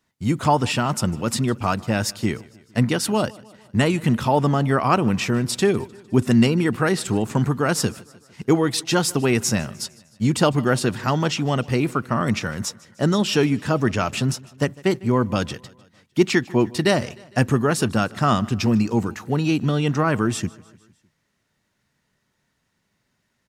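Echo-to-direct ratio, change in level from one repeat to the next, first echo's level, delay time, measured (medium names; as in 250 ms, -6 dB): -21.5 dB, -4.5 dB, -23.0 dB, 152 ms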